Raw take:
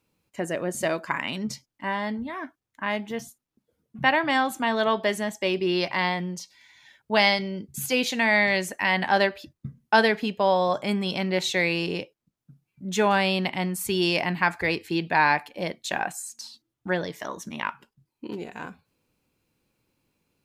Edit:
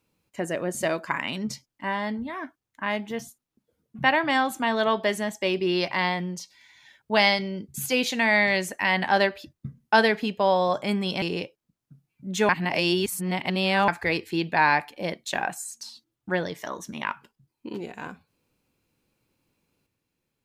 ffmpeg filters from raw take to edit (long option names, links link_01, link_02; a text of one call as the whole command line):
ffmpeg -i in.wav -filter_complex "[0:a]asplit=4[link_01][link_02][link_03][link_04];[link_01]atrim=end=11.222[link_05];[link_02]atrim=start=11.798:end=13.072[link_06];[link_03]atrim=start=13.068:end=14.462,asetpts=PTS-STARTPTS,areverse[link_07];[link_04]atrim=start=14.458[link_08];[link_05][link_06]acrossfade=duration=0.004:curve1=hsin:curve2=hsin[link_09];[link_09][link_07]acrossfade=duration=0.004:curve1=hsin:curve2=hsin[link_10];[link_10][link_08]acrossfade=duration=0.004:curve1=hsin:curve2=hsin" out.wav